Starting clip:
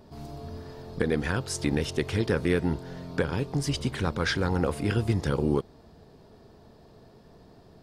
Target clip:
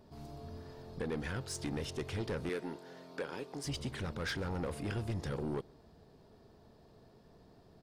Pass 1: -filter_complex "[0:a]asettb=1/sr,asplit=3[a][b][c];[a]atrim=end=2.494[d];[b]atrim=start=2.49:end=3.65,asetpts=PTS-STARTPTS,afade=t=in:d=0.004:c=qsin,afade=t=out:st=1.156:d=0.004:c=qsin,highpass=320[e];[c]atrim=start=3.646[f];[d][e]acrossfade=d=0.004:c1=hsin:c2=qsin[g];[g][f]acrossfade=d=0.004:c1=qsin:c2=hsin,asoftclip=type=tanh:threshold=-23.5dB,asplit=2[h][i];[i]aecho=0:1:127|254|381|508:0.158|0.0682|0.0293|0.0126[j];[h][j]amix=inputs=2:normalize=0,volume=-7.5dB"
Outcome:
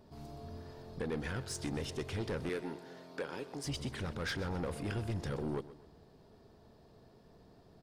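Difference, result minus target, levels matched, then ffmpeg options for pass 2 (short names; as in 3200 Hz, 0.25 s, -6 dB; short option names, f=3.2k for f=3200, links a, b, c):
echo-to-direct +11.5 dB
-filter_complex "[0:a]asettb=1/sr,asplit=3[a][b][c];[a]atrim=end=2.494[d];[b]atrim=start=2.49:end=3.65,asetpts=PTS-STARTPTS,afade=t=in:d=0.004:c=qsin,afade=t=out:st=1.156:d=0.004:c=qsin,highpass=320[e];[c]atrim=start=3.646[f];[d][e]acrossfade=d=0.004:c1=hsin:c2=qsin[g];[g][f]acrossfade=d=0.004:c1=qsin:c2=hsin,asoftclip=type=tanh:threshold=-23.5dB,asplit=2[h][i];[i]aecho=0:1:127|254:0.0422|0.0181[j];[h][j]amix=inputs=2:normalize=0,volume=-7.5dB"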